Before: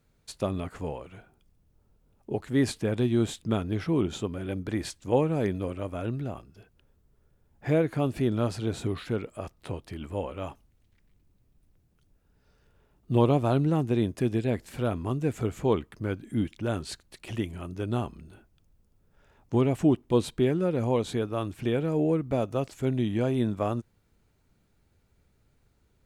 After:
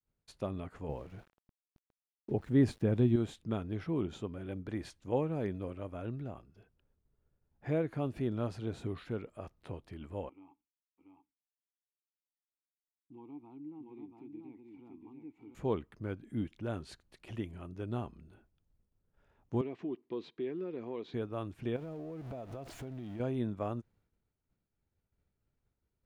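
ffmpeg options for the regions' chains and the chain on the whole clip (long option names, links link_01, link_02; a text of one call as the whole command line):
ffmpeg -i in.wav -filter_complex "[0:a]asettb=1/sr,asplit=3[link_01][link_02][link_03];[link_01]atrim=end=0.894[link_04];[link_02]atrim=start=0.89:end=3.16,asetpts=PTS-STARTPTS,afade=type=in:duration=0.004:curve=qsin,afade=type=out:start_time=2.266:duration=0.004:curve=qsin,lowshelf=frequency=450:gain=8.5,aeval=exprs='val(0)*gte(abs(val(0)),0.00422)':channel_layout=same[link_05];[link_03]atrim=start=3.156[link_06];[link_04][link_05]acrossfade=duration=0.004:curve1=hsin:curve2=qsin[link_07];[link_07][link_06]acrossfade=duration=0.004:curve1=qsin:curve2=hsin,asettb=1/sr,asplit=3[link_08][link_09][link_10];[link_08]atrim=end=10.294[link_11];[link_09]atrim=start=10.29:end=15.55,asetpts=PTS-STARTPTS,afade=type=in:duration=0.004:curve=qsin,afade=type=out:start_time=5.256:duration=0.004:curve=qsin,acompressor=threshold=-33dB:ratio=2:attack=3.2:release=140:knee=1:detection=peak,asplit=3[link_12][link_13][link_14];[link_12]bandpass=frequency=300:width_type=q:width=8,volume=0dB[link_15];[link_13]bandpass=frequency=870:width_type=q:width=8,volume=-6dB[link_16];[link_14]bandpass=frequency=2240:width_type=q:width=8,volume=-9dB[link_17];[link_15][link_16][link_17]amix=inputs=3:normalize=0,aecho=1:1:685:0.631,atrim=end_sample=231966[link_18];[link_10]atrim=start=15.546[link_19];[link_11][link_18]acrossfade=duration=0.004:curve1=hsin:curve2=qsin[link_20];[link_20][link_19]acrossfade=duration=0.004:curve1=qsin:curve2=hsin,asettb=1/sr,asplit=3[link_21][link_22][link_23];[link_21]atrim=end=19.614[link_24];[link_22]atrim=start=19.61:end=21.14,asetpts=PTS-STARTPTS,afade=type=in:duration=0.004:curve=qsin,afade=type=out:start_time=1.526:duration=0.004:curve=qsin,acompressor=threshold=-23dB:ratio=4:attack=3.2:release=140:knee=1:detection=peak,highpass=310,equalizer=frequency=370:width_type=q:width=4:gain=4,equalizer=frequency=570:width_type=q:width=4:gain=-9,equalizer=frequency=810:width_type=q:width=4:gain=-7,equalizer=frequency=1400:width_type=q:width=4:gain=-8,equalizer=frequency=3000:width_type=q:width=4:gain=-3,lowpass=frequency=4500:width=0.5412,lowpass=frequency=4500:width=1.3066[link_25];[link_23]atrim=start=21.136[link_26];[link_24][link_25]acrossfade=duration=0.004:curve1=hsin:curve2=qsin[link_27];[link_27][link_26]acrossfade=duration=0.004:curve1=qsin:curve2=hsin,asettb=1/sr,asplit=3[link_28][link_29][link_30];[link_28]atrim=end=21.764[link_31];[link_29]atrim=start=21.76:end=23.2,asetpts=PTS-STARTPTS,afade=type=in:duration=0.004:curve=qsin,afade=type=out:start_time=1.436:duration=0.004:curve=qsin,aeval=exprs='val(0)+0.5*0.0188*sgn(val(0))':channel_layout=same,equalizer=frequency=680:width_type=o:width=0.24:gain=8.5,acompressor=threshold=-31dB:ratio=16:attack=3.2:release=140:knee=1:detection=peak[link_32];[link_30]atrim=start=23.196[link_33];[link_31][link_32]acrossfade=duration=0.004:curve1=hsin:curve2=qsin[link_34];[link_34][link_33]acrossfade=duration=0.004:curve1=qsin:curve2=hsin,bandreject=frequency=7800:width=21,agate=range=-33dB:threshold=-59dB:ratio=3:detection=peak,highshelf=frequency=4000:gain=-9.5,volume=-8dB" out.wav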